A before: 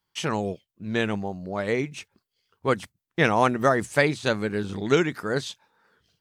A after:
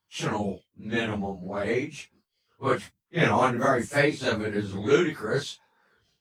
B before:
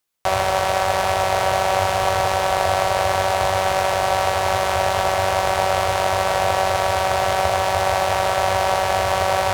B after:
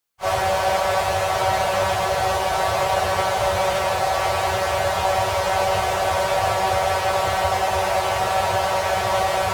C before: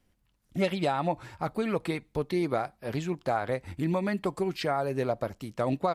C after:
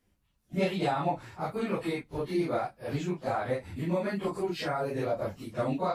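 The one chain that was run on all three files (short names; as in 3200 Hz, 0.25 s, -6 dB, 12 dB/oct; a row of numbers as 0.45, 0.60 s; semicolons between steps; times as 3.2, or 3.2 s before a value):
phase scrambler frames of 0.1 s; gain -1.5 dB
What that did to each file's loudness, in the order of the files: -1.5, -1.5, -1.5 LU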